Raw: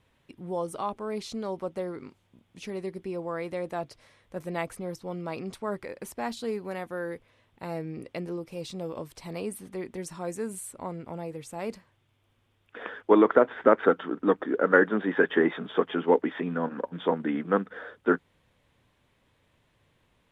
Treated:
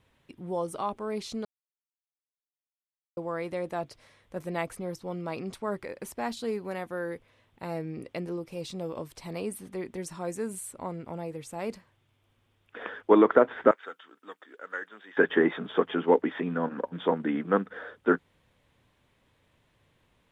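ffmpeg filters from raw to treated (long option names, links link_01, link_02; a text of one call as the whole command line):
ffmpeg -i in.wav -filter_complex "[0:a]asettb=1/sr,asplit=3[link_01][link_02][link_03];[link_01]atrim=end=13.714[link_04];[link_02]atrim=start=13.71:end=15.17,asetpts=PTS-STARTPTS,afade=type=in:duration=0.004:curve=qsin,afade=type=out:start_time=1.456:duration=0.004:curve=qsin,aderivative[link_05];[link_03]atrim=start=15.166[link_06];[link_04][link_05]acrossfade=duration=0.004:curve1=hsin:curve2=qsin[link_07];[link_07][link_06]acrossfade=duration=0.004:curve1=qsin:curve2=hsin,asplit=3[link_08][link_09][link_10];[link_08]atrim=end=1.45,asetpts=PTS-STARTPTS,afade=type=out:start_time=1.446:duration=0.004:curve=hsin[link_11];[link_09]atrim=start=1.45:end=3.17,asetpts=PTS-STARTPTS,volume=0[link_12];[link_10]atrim=start=3.17,asetpts=PTS-STARTPTS,afade=type=in:duration=0.004:curve=hsin[link_13];[link_11][link_12][link_13]concat=n=3:v=0:a=1" out.wav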